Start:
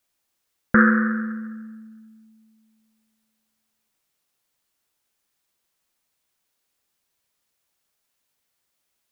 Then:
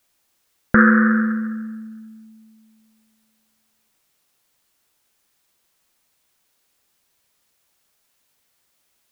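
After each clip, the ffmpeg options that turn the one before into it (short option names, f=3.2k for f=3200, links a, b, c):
-af "alimiter=limit=-9dB:level=0:latency=1:release=364,volume=8dB"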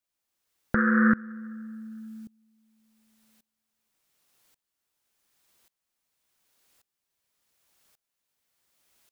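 -af "acompressor=threshold=-19dB:ratio=3,aeval=exprs='val(0)*pow(10,-23*if(lt(mod(-0.88*n/s,1),2*abs(-0.88)/1000),1-mod(-0.88*n/s,1)/(2*abs(-0.88)/1000),(mod(-0.88*n/s,1)-2*abs(-0.88)/1000)/(1-2*abs(-0.88)/1000))/20)':c=same,volume=3dB"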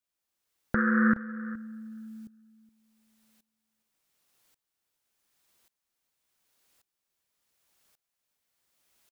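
-af "aecho=1:1:419:0.133,volume=-2.5dB"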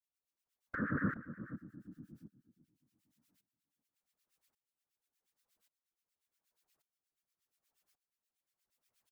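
-filter_complex "[0:a]afftfilt=real='hypot(re,im)*cos(2*PI*random(0))':imag='hypot(re,im)*sin(2*PI*random(1))':win_size=512:overlap=0.75,acrossover=split=1300[a][b];[a]aeval=exprs='val(0)*(1-1/2+1/2*cos(2*PI*8.4*n/s))':c=same[c];[b]aeval=exprs='val(0)*(1-1/2-1/2*cos(2*PI*8.4*n/s))':c=same[d];[c][d]amix=inputs=2:normalize=0"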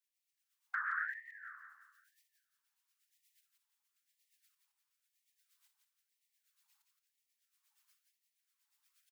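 -af "aecho=1:1:171|342|513|684|855:0.562|0.231|0.0945|0.0388|0.0159,afftfilt=real='re*gte(b*sr/1024,770*pow(1800/770,0.5+0.5*sin(2*PI*1*pts/sr)))':imag='im*gte(b*sr/1024,770*pow(1800/770,0.5+0.5*sin(2*PI*1*pts/sr)))':win_size=1024:overlap=0.75,volume=4dB"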